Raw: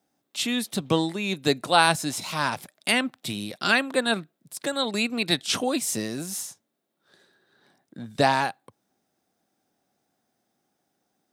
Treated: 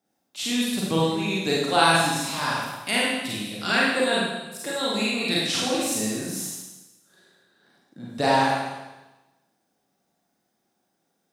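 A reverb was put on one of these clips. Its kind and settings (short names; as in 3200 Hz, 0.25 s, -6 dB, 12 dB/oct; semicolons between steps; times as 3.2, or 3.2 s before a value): Schroeder reverb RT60 1.1 s, combs from 33 ms, DRR -6 dB; gain -5.5 dB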